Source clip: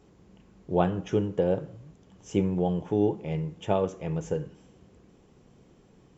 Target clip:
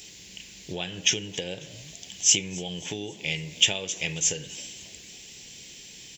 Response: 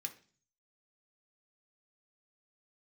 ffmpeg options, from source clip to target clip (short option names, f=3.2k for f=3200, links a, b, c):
-filter_complex "[0:a]acompressor=threshold=-32dB:ratio=8,aexciter=amount=15.5:drive=7.9:freq=2k,asplit=2[a][b];[b]asplit=4[c][d][e][f];[c]adelay=271,afreqshift=83,volume=-21.5dB[g];[d]adelay=542,afreqshift=166,volume=-27dB[h];[e]adelay=813,afreqshift=249,volume=-32.5dB[i];[f]adelay=1084,afreqshift=332,volume=-38dB[j];[g][h][i][j]amix=inputs=4:normalize=0[k];[a][k]amix=inputs=2:normalize=0"